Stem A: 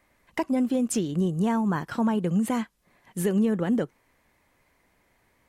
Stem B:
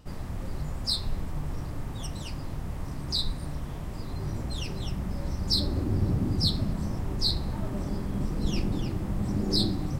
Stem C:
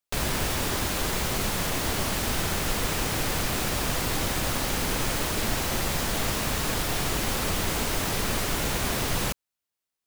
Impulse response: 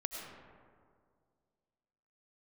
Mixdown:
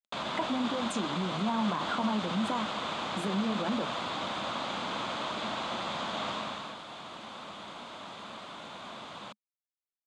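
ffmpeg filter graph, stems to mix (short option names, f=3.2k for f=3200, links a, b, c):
-filter_complex "[0:a]acompressor=threshold=-26dB:ratio=6,flanger=delay=9:depth=7.3:regen=-55:speed=0.43:shape=triangular,volume=2dB[a];[2:a]lowpass=5.1k,volume=-8.5dB,afade=t=out:st=6.31:d=0.46:silence=0.334965[b];[a][b]amix=inputs=2:normalize=0,equalizer=f=1.1k:t=o:w=0.99:g=9.5,alimiter=limit=-22.5dB:level=0:latency=1:release=32,volume=0dB,acrusher=bits=8:mix=0:aa=0.000001,highpass=200,equalizer=f=210:t=q:w=4:g=6,equalizer=f=420:t=q:w=4:g=-5,equalizer=f=630:t=q:w=4:g=5,equalizer=f=1.8k:t=q:w=4:g=-5,equalizer=f=3.5k:t=q:w=4:g=9,equalizer=f=5.5k:t=q:w=4:g=-8,lowpass=f=7.7k:w=0.5412,lowpass=f=7.7k:w=1.3066"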